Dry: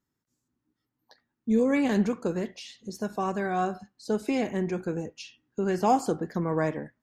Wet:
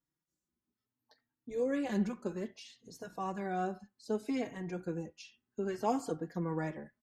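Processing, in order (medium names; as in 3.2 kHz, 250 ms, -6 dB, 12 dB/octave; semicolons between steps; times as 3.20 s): endless flanger 3.8 ms +0.64 Hz; trim -6 dB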